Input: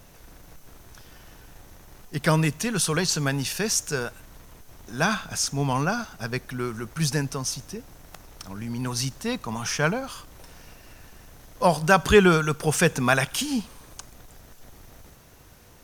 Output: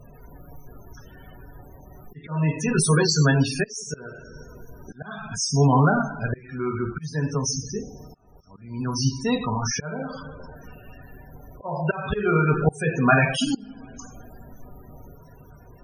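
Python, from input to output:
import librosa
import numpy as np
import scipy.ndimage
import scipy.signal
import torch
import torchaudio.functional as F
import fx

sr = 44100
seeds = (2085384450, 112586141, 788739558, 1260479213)

y = fx.rev_double_slope(x, sr, seeds[0], early_s=0.64, late_s=2.9, knee_db=-18, drr_db=1.0)
y = fx.auto_swell(y, sr, attack_ms=504.0)
y = fx.spec_topn(y, sr, count=32)
y = y * 10.0 ** (3.5 / 20.0)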